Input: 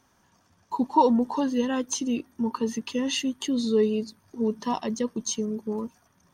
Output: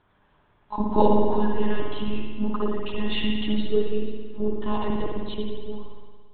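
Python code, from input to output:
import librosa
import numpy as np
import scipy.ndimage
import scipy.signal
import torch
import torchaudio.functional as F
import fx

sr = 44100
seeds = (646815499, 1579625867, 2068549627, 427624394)

y = fx.fade_out_tail(x, sr, length_s=1.05)
y = fx.lpc_monotone(y, sr, seeds[0], pitch_hz=210.0, order=10)
y = fx.rev_spring(y, sr, rt60_s=1.6, pass_ms=(56,), chirp_ms=55, drr_db=-0.5)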